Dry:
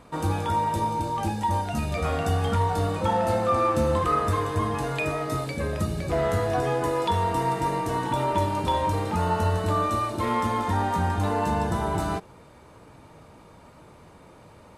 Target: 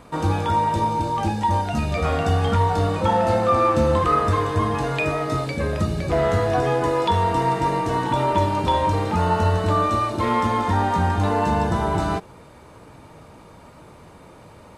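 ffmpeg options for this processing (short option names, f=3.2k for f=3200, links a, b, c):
-filter_complex "[0:a]acrossover=split=7400[a][b];[b]acompressor=threshold=-59dB:ratio=4:attack=1:release=60[c];[a][c]amix=inputs=2:normalize=0,volume=4.5dB"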